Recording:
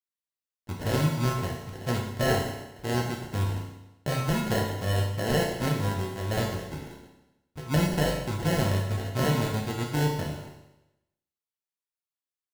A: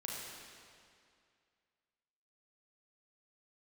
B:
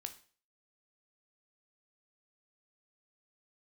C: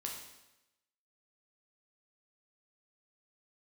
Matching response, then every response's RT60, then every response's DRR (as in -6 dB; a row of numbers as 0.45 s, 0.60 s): C; 2.3 s, 0.40 s, 0.95 s; -4.0 dB, 7.0 dB, -1.0 dB